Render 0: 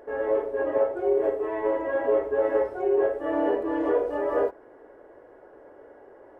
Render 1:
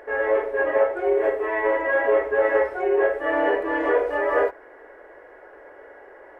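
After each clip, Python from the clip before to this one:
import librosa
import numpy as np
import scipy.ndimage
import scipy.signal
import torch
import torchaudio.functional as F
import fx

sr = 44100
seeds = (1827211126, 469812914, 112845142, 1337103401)

y = fx.graphic_eq(x, sr, hz=(125, 250, 2000), db=(-11, -7, 11))
y = F.gain(torch.from_numpy(y), 4.5).numpy()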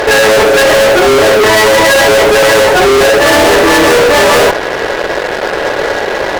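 y = fx.fuzz(x, sr, gain_db=43.0, gate_db=-49.0)
y = F.gain(torch.from_numpy(y), 7.5).numpy()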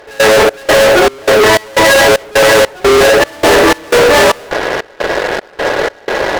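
y = fx.step_gate(x, sr, bpm=153, pattern='..xxx..xxxx', floor_db=-24.0, edge_ms=4.5)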